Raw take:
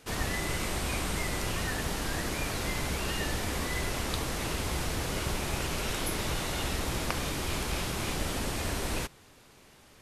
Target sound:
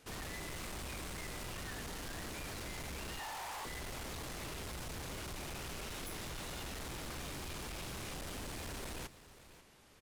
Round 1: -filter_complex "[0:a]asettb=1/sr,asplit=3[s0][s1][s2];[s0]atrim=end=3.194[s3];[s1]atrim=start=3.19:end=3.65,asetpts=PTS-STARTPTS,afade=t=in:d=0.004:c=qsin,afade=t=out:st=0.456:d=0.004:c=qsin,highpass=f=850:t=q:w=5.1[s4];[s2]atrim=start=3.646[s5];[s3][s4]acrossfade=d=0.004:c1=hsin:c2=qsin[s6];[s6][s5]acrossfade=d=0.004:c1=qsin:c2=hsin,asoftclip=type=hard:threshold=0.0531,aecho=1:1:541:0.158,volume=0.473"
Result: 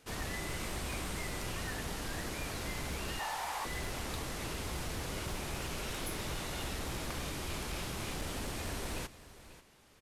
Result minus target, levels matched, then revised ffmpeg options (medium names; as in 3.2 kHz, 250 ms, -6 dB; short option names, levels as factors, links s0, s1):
hard clipper: distortion -13 dB
-filter_complex "[0:a]asettb=1/sr,asplit=3[s0][s1][s2];[s0]atrim=end=3.194[s3];[s1]atrim=start=3.19:end=3.65,asetpts=PTS-STARTPTS,afade=t=in:d=0.004:c=qsin,afade=t=out:st=0.456:d=0.004:c=qsin,highpass=f=850:t=q:w=5.1[s4];[s2]atrim=start=3.646[s5];[s3][s4]acrossfade=d=0.004:c1=hsin:c2=qsin[s6];[s6][s5]acrossfade=d=0.004:c1=qsin:c2=hsin,asoftclip=type=hard:threshold=0.0168,aecho=1:1:541:0.158,volume=0.473"